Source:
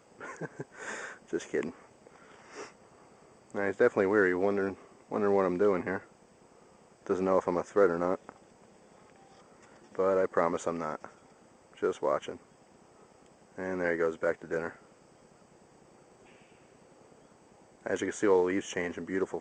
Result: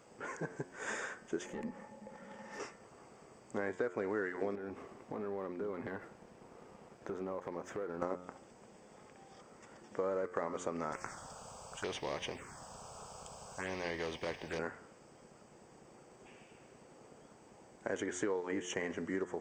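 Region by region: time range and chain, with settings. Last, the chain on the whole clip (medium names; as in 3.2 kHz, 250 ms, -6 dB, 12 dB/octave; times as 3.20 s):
1.46–2.60 s: compression 2:1, threshold -46 dBFS + valve stage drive 41 dB, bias 0.55 + small resonant body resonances 210/540/850/1800 Hz, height 16 dB, ringing for 85 ms
4.55–8.02 s: treble shelf 4.5 kHz -9.5 dB + compression 5:1, threshold -41 dBFS + waveshaping leveller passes 1
10.92–14.59 s: peaking EQ 240 Hz -8 dB 0.95 oct + touch-sensitive phaser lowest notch 300 Hz, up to 1.4 kHz, full sweep at -33 dBFS + spectrum-flattening compressor 2:1
whole clip: de-hum 89.74 Hz, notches 27; compression 6:1, threshold -33 dBFS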